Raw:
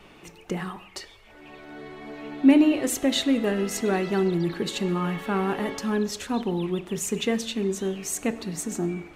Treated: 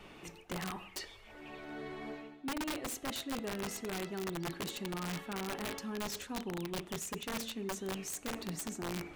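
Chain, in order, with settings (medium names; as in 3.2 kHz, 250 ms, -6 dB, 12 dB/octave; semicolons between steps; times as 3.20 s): reverse; compression 10:1, threshold -33 dBFS, peak gain reduction 21.5 dB; reverse; integer overflow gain 29 dB; trim -3 dB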